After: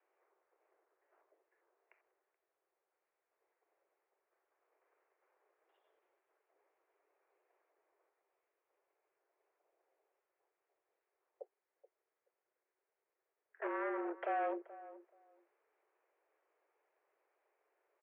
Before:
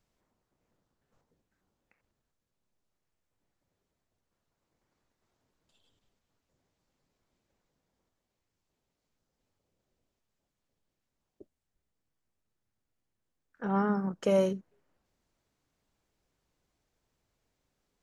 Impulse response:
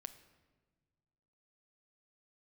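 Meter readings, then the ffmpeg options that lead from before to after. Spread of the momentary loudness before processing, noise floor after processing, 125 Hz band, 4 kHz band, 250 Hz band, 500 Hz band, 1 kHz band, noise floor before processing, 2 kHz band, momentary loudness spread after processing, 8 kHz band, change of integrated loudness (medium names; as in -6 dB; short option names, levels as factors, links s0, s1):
11 LU, under -85 dBFS, under -40 dB, under -15 dB, -14.0 dB, -11.0 dB, -2.5 dB, -85 dBFS, -1.5 dB, 21 LU, under -20 dB, -10.0 dB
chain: -filter_complex "[0:a]alimiter=level_in=1.19:limit=0.0631:level=0:latency=1:release=129,volume=0.841,asoftclip=type=hard:threshold=0.0168,afreqshift=-45,asplit=2[s0][s1];[s1]adelay=428,lowpass=f=1000:p=1,volume=0.158,asplit=2[s2][s3];[s3]adelay=428,lowpass=f=1000:p=1,volume=0.17[s4];[s2][s4]amix=inputs=2:normalize=0[s5];[s0][s5]amix=inputs=2:normalize=0,highpass=f=170:t=q:w=0.5412,highpass=f=170:t=q:w=1.307,lowpass=f=2200:t=q:w=0.5176,lowpass=f=2200:t=q:w=0.7071,lowpass=f=2200:t=q:w=1.932,afreqshift=200,volume=1.33"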